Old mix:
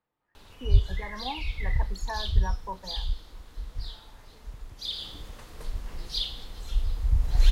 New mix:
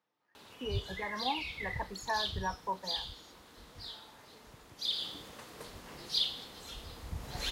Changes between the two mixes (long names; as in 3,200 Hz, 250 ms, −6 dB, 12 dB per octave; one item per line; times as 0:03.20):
speech: remove high-frequency loss of the air 230 metres
master: add high-pass filter 170 Hz 12 dB per octave